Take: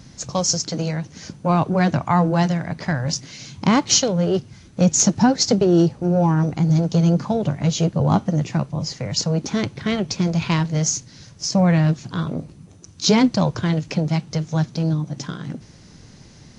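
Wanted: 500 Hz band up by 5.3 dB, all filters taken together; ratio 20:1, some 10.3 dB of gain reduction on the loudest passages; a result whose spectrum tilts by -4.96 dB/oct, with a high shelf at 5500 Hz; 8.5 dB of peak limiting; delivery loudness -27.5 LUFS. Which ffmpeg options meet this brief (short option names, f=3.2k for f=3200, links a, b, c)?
-af "equalizer=f=500:t=o:g=6.5,highshelf=f=5.5k:g=6.5,acompressor=threshold=-18dB:ratio=20,volume=-2dB,alimiter=limit=-17dB:level=0:latency=1"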